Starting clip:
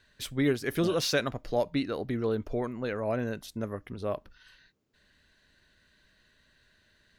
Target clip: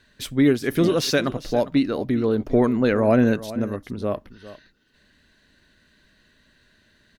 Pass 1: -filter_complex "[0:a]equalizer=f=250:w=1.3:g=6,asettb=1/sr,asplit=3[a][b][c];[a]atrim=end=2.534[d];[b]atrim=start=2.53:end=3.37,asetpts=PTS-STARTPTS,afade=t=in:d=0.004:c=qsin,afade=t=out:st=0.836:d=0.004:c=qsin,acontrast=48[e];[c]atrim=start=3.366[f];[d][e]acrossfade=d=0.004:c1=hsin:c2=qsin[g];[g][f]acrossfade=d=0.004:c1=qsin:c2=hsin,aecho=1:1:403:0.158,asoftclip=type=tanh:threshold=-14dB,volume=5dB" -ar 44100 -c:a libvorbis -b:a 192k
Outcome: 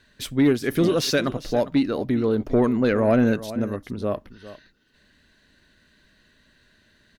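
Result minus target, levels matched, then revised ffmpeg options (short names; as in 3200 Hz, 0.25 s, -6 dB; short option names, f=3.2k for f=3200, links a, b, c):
soft clip: distortion +17 dB
-filter_complex "[0:a]equalizer=f=250:w=1.3:g=6,asettb=1/sr,asplit=3[a][b][c];[a]atrim=end=2.534[d];[b]atrim=start=2.53:end=3.37,asetpts=PTS-STARTPTS,afade=t=in:d=0.004:c=qsin,afade=t=out:st=0.836:d=0.004:c=qsin,acontrast=48[e];[c]atrim=start=3.366[f];[d][e]acrossfade=d=0.004:c1=hsin:c2=qsin[g];[g][f]acrossfade=d=0.004:c1=qsin:c2=hsin,aecho=1:1:403:0.158,asoftclip=type=tanh:threshold=-4.5dB,volume=5dB" -ar 44100 -c:a libvorbis -b:a 192k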